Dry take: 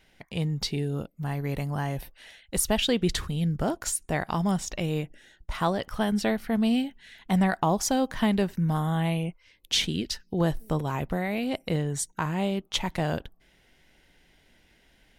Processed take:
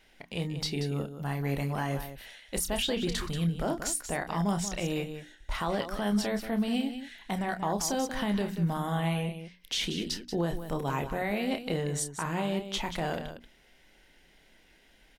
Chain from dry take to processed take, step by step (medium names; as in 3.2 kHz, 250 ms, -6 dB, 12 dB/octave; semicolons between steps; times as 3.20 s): peaking EQ 100 Hz -10 dB 0.97 oct; hum notches 60/120/180/240/300 Hz; peak limiter -21.5 dBFS, peak gain reduction 9.5 dB; loudspeakers at several distances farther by 10 m -8 dB, 63 m -10 dB